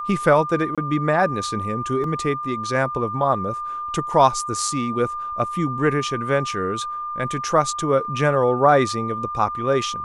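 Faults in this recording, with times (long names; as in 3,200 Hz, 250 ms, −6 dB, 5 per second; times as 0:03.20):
whistle 1,200 Hz −26 dBFS
0:00.75–0:00.78: drop-out 26 ms
0:02.04: drop-out 2.1 ms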